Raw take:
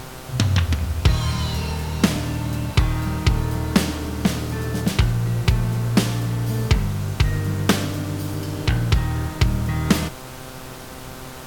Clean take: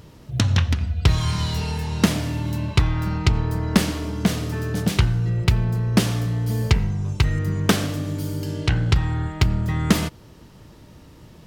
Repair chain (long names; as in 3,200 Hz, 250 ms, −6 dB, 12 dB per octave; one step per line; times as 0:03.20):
hum removal 129.1 Hz, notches 12
noise reduction from a noise print 10 dB